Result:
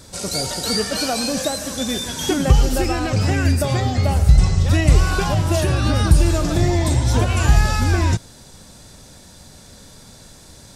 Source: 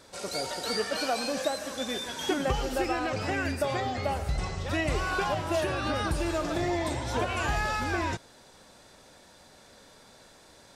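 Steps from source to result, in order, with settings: tone controls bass +15 dB, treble +10 dB; gain +4.5 dB

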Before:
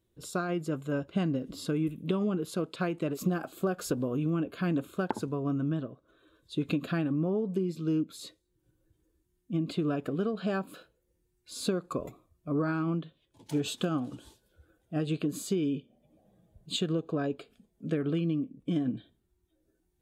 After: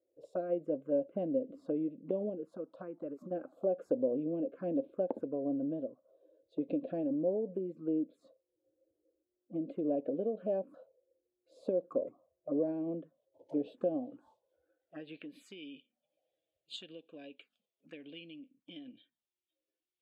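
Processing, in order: 2.29–3.31 compressor 4:1, threshold -32 dBFS, peak gain reduction 8.5 dB; small resonant body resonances 270/520 Hz, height 12 dB, ringing for 25 ms; envelope phaser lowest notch 190 Hz, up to 1300 Hz, full sweep at -20 dBFS; band-pass sweep 590 Hz -> 2800 Hz, 13.86–15.65; gain -2 dB

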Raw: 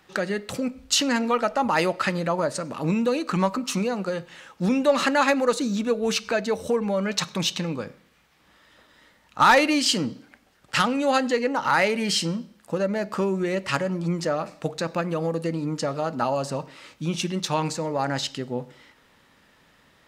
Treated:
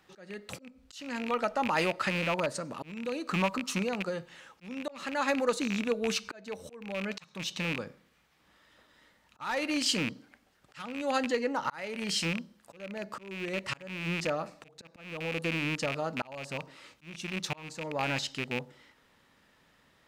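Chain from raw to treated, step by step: rattling part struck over -31 dBFS, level -15 dBFS; auto swell 0.491 s; gain -6.5 dB

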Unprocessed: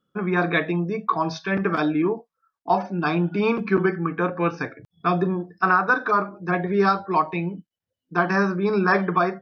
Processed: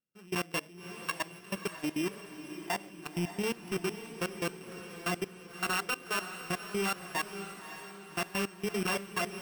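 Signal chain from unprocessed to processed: sample sorter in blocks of 16 samples; soft clip -13 dBFS, distortion -18 dB; level quantiser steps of 22 dB; on a send: diffused feedback echo 0.569 s, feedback 50%, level -10 dB; on the sum: gain -8.5 dB

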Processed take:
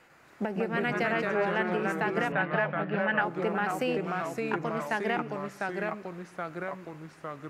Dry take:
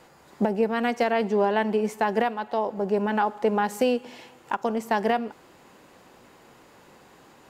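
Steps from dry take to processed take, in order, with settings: band shelf 1900 Hz +8 dB 1.3 oct; echoes that change speed 99 ms, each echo -2 st, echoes 3; 2.32–3.21 speaker cabinet 100–3900 Hz, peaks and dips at 160 Hz +7 dB, 370 Hz -8 dB, 590 Hz +4 dB, 1700 Hz +8 dB, 2900 Hz +6 dB; gain -8.5 dB

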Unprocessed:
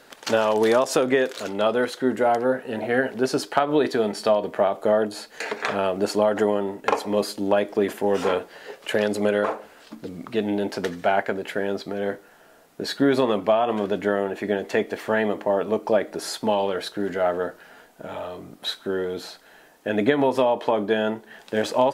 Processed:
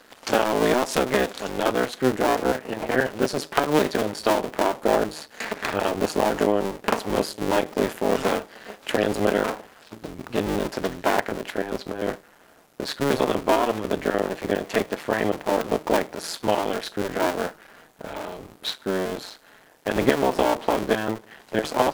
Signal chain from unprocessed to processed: cycle switcher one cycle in 2, muted; gain +2 dB

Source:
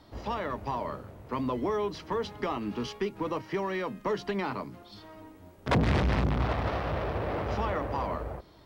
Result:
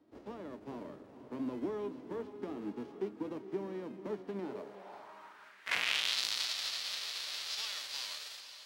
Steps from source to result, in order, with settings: spectral whitening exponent 0.3; diffused feedback echo 0.471 s, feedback 47%, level -11 dB; band-pass sweep 310 Hz -> 4300 Hz, 4.35–6.22

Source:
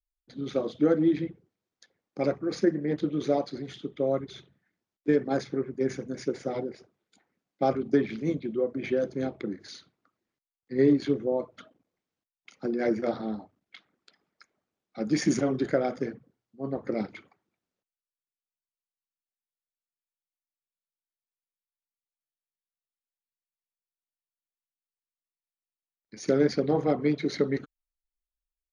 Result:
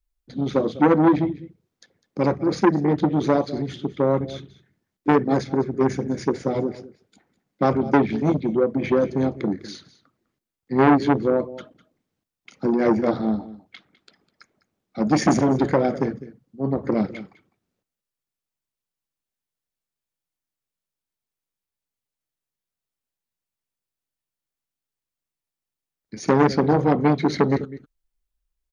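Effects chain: low shelf 320 Hz +9.5 dB; echo 0.203 s -17.5 dB; core saturation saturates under 860 Hz; gain +5 dB

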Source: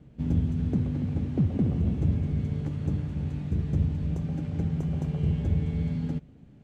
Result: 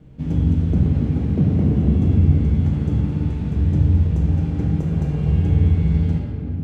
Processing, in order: shoebox room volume 140 m³, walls hard, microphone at 0.58 m; gain +3.5 dB

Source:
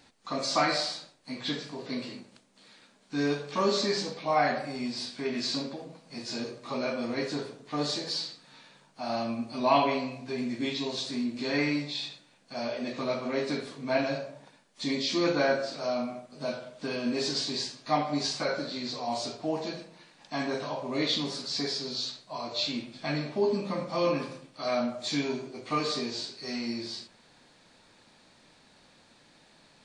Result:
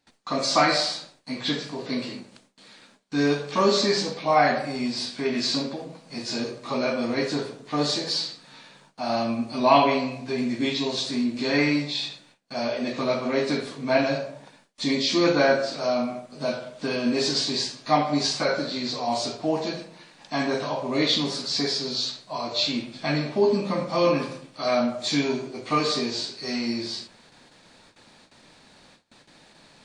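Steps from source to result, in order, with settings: gate with hold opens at -49 dBFS; gain +6 dB

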